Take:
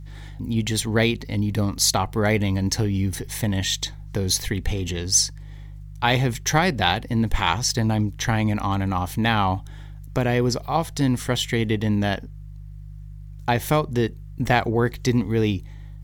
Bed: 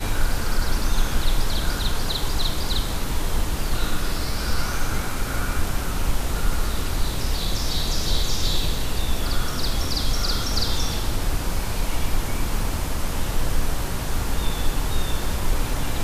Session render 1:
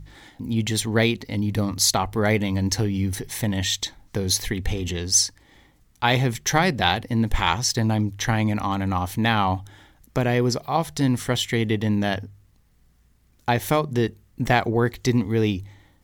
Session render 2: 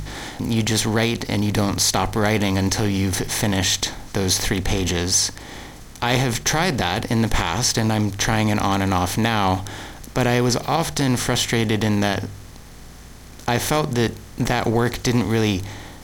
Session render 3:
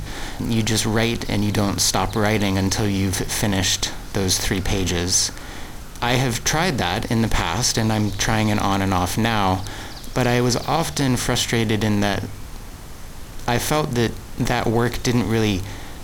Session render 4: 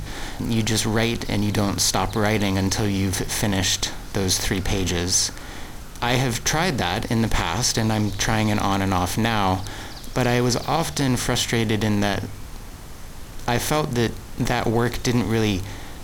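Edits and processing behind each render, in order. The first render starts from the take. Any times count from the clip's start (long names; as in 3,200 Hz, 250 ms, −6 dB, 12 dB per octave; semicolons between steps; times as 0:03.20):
hum removal 50 Hz, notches 3
compressor on every frequency bin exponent 0.6; brickwall limiter −8 dBFS, peak gain reduction 7 dB
mix in bed −13 dB
level −1.5 dB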